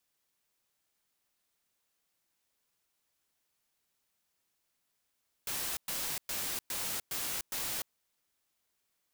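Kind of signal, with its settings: noise bursts white, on 0.30 s, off 0.11 s, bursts 6, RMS -36 dBFS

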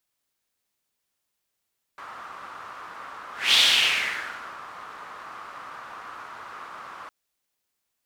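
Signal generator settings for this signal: whoosh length 5.11 s, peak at 1.57 s, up 0.23 s, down 1.09 s, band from 1.2 kHz, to 3.4 kHz, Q 3.7, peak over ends 23 dB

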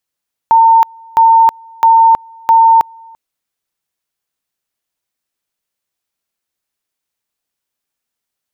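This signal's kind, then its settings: two-level tone 907 Hz -3.5 dBFS, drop 30 dB, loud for 0.32 s, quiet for 0.34 s, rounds 4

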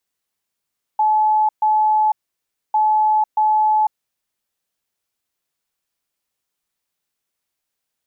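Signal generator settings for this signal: beep pattern sine 859 Hz, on 0.50 s, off 0.13 s, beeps 2, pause 0.62 s, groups 2, -12.5 dBFS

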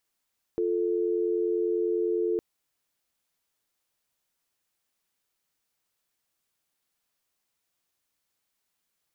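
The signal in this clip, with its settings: call progress tone dial tone, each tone -26.5 dBFS 1.81 s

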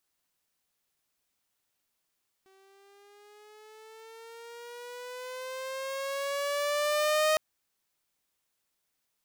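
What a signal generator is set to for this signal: gliding synth tone saw, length 4.91 s, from 382 Hz, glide +8.5 st, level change +37 dB, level -19.5 dB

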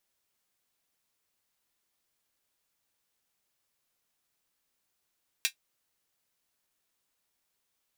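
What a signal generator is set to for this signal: closed hi-hat, high-pass 2.4 kHz, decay 0.10 s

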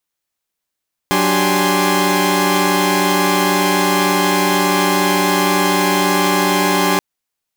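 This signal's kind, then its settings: chord F#3/D4/G4/G#5/C6 saw, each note -17 dBFS 5.88 s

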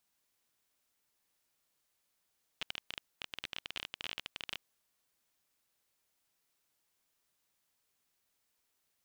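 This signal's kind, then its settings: random clicks 22 per s -21.5 dBFS 2.09 s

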